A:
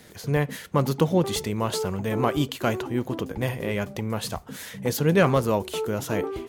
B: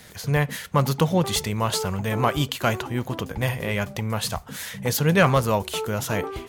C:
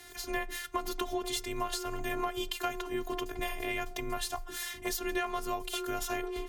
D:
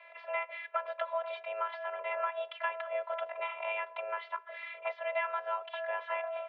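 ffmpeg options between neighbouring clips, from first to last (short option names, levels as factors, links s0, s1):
-af "equalizer=f=330:t=o:w=1.4:g=-9,volume=1.78"
-af "afftfilt=real='hypot(re,im)*cos(PI*b)':imag='0':win_size=512:overlap=0.75,afreqshift=21,acompressor=threshold=0.0316:ratio=6"
-af "highpass=f=180:t=q:w=0.5412,highpass=f=180:t=q:w=1.307,lowpass=f=2500:t=q:w=0.5176,lowpass=f=2500:t=q:w=0.7071,lowpass=f=2500:t=q:w=1.932,afreqshift=290"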